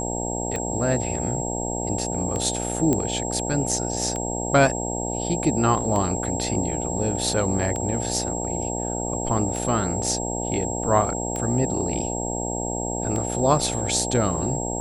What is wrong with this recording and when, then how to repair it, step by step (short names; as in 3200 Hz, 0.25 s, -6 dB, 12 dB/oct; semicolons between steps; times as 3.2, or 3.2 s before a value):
buzz 60 Hz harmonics 15 -29 dBFS
tick 33 1/3 rpm -15 dBFS
tone 7600 Hz -30 dBFS
2.93 pop -9 dBFS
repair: de-click; notch 7600 Hz, Q 30; de-hum 60 Hz, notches 15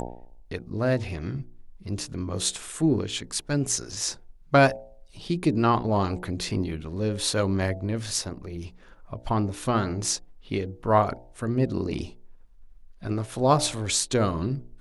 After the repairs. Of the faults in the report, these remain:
none